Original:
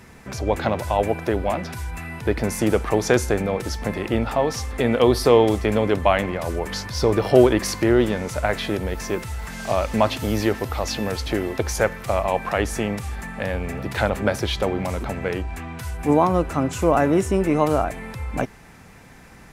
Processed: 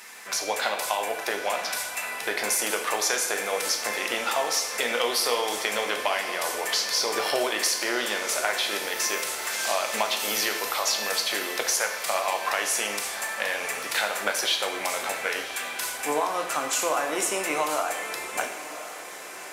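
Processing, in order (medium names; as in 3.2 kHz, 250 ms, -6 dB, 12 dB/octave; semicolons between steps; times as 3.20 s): high-pass 710 Hz 12 dB/octave; treble shelf 2.3 kHz +11 dB; compression, threshold -23 dBFS, peak gain reduction 10 dB; echo that smears into a reverb 1092 ms, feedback 58%, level -13.5 dB; reverberation RT60 0.80 s, pre-delay 5 ms, DRR 3.5 dB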